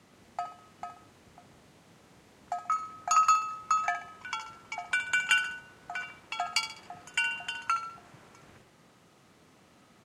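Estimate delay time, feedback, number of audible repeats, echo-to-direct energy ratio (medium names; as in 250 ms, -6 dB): 67 ms, 41%, 4, -9.5 dB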